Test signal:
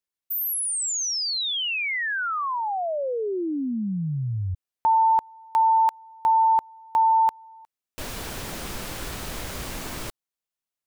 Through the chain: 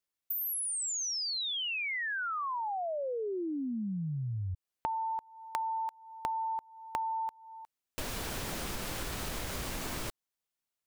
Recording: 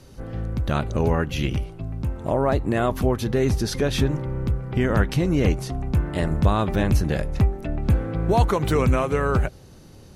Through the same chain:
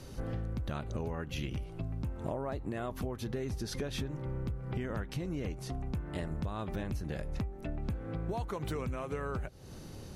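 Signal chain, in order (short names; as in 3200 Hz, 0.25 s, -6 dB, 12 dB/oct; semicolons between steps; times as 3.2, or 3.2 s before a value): compressor 12:1, threshold -33 dBFS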